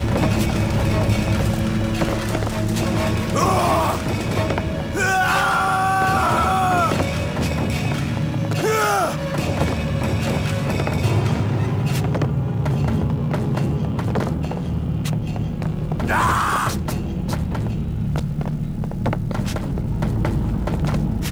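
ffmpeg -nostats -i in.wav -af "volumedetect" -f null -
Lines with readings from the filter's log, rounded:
mean_volume: -20.3 dB
max_volume: -5.1 dB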